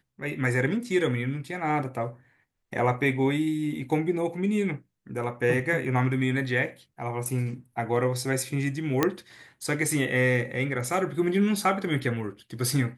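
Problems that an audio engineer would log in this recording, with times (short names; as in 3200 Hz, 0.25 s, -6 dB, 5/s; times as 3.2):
9.03 pop -7 dBFS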